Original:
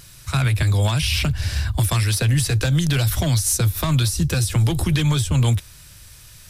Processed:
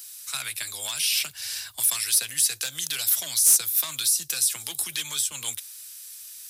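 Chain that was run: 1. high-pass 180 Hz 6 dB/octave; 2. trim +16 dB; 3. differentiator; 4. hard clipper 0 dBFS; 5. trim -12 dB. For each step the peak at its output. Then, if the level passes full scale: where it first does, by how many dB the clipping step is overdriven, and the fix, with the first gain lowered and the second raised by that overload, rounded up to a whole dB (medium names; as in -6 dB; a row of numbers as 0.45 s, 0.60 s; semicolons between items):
-10.0 dBFS, +6.0 dBFS, +7.0 dBFS, 0.0 dBFS, -12.0 dBFS; step 2, 7.0 dB; step 2 +9 dB, step 5 -5 dB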